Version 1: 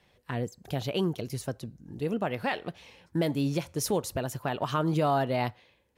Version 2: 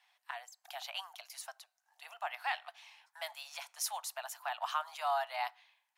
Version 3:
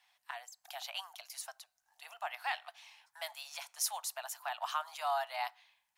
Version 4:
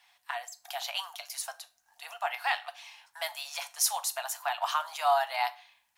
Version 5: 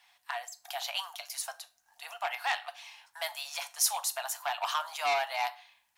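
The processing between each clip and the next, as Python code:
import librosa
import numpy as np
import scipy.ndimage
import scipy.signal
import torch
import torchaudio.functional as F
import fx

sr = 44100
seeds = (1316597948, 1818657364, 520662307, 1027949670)

y1 = scipy.signal.sosfilt(scipy.signal.butter(12, 700.0, 'highpass', fs=sr, output='sos'), x)
y1 = y1 * 10.0 ** (-3.5 / 20.0)
y2 = fx.bass_treble(y1, sr, bass_db=12, treble_db=4)
y2 = y2 * 10.0 ** (-1.0 / 20.0)
y3 = fx.rev_fdn(y2, sr, rt60_s=0.33, lf_ratio=1.45, hf_ratio=0.9, size_ms=25.0, drr_db=9.0)
y3 = y3 * 10.0 ** (7.0 / 20.0)
y4 = fx.transformer_sat(y3, sr, knee_hz=3700.0)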